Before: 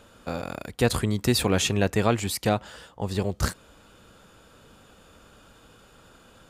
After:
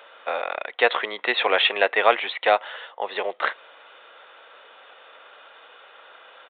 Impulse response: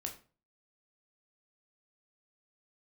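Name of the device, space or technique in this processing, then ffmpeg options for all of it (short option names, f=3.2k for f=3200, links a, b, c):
musical greeting card: -af "aresample=8000,aresample=44100,highpass=f=540:w=0.5412,highpass=f=540:w=1.3066,equalizer=f=2k:t=o:w=0.25:g=6.5,volume=8.5dB"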